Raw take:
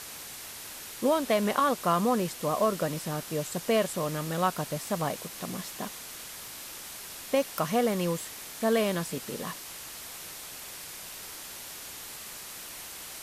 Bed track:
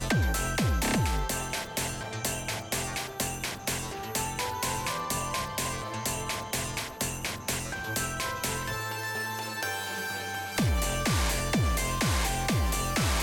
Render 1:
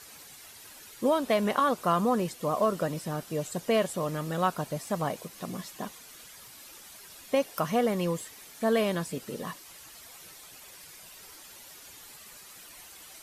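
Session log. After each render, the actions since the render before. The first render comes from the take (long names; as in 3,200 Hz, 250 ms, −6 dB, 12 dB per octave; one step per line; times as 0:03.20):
broadband denoise 10 dB, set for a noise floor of −43 dBFS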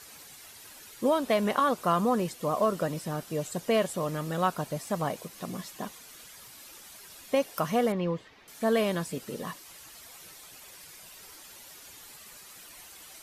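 0:07.92–0:08.48: high-frequency loss of the air 260 metres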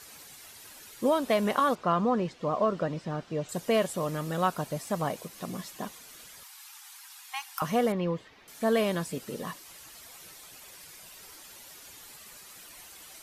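0:01.75–0:03.49: high-frequency loss of the air 150 metres
0:06.43–0:07.62: linear-phase brick-wall high-pass 740 Hz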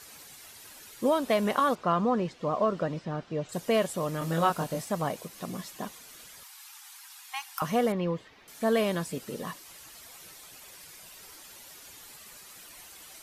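0:02.99–0:03.53: high-frequency loss of the air 57 metres
0:04.19–0:04.85: double-tracking delay 24 ms −2 dB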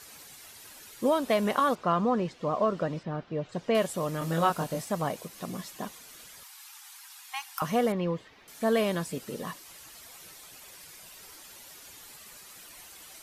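0:03.03–0:03.75: high-frequency loss of the air 140 metres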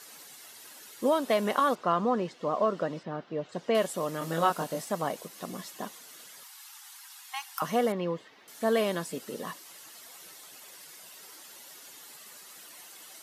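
high-pass filter 210 Hz 12 dB per octave
notch filter 2,400 Hz, Q 17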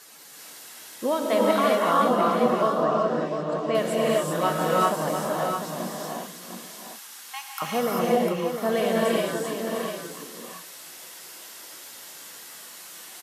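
single-tap delay 701 ms −7.5 dB
reverb whose tail is shaped and stops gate 420 ms rising, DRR −4 dB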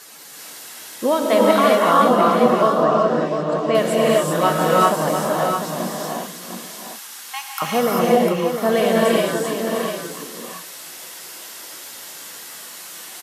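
level +6.5 dB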